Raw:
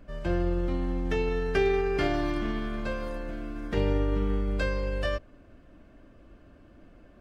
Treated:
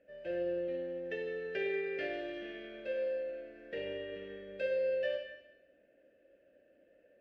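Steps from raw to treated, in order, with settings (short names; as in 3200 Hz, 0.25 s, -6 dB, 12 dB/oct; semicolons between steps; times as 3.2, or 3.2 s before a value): dynamic EQ 3700 Hz, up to +5 dB, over -49 dBFS, Q 0.78; vowel filter e; Schroeder reverb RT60 0.91 s, combs from 31 ms, DRR 3.5 dB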